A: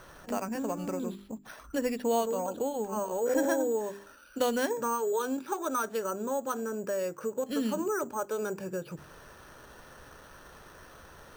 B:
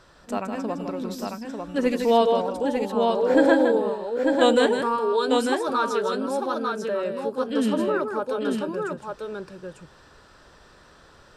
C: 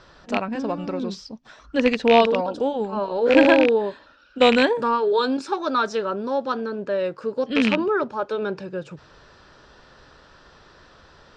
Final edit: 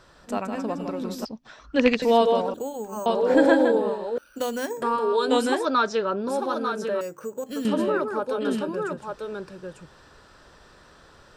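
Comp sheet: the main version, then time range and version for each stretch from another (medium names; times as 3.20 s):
B
1.25–2.02 s: from C
2.54–3.06 s: from A
4.18–4.82 s: from A
5.65–6.28 s: from C
7.01–7.65 s: from A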